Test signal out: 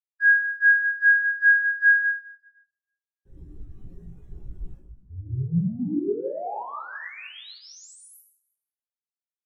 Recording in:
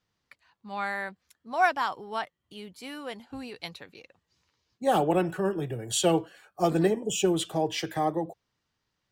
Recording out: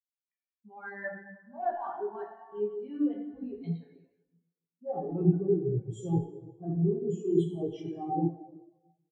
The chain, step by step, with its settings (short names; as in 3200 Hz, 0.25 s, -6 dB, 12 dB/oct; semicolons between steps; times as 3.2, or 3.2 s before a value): notch 4700 Hz, Q 8.1; reverb removal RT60 0.55 s; tone controls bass +7 dB, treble +3 dB; sample leveller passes 3; bell 380 Hz +6 dB 0.41 oct; reverse; compressor 12:1, threshold -22 dBFS; reverse; doubler 17 ms -9 dB; on a send: thin delay 0.176 s, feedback 56%, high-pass 2100 Hz, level -16.5 dB; on the sum: plate-style reverb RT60 2.7 s, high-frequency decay 0.65×, DRR -3.5 dB; spectral expander 2.5:1; gain -4 dB